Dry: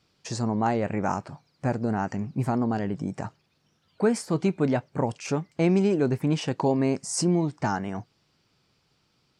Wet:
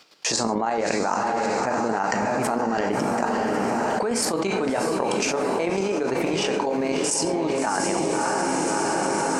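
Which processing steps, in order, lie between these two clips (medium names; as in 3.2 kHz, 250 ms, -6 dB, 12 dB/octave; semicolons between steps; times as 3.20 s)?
high-pass 430 Hz 12 dB/octave; gate with hold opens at -59 dBFS; square tremolo 9 Hz, depth 65%, duty 25%; echo that smears into a reverb 631 ms, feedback 53%, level -8.5 dB; gated-style reverb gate 180 ms falling, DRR 8.5 dB; level flattener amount 100%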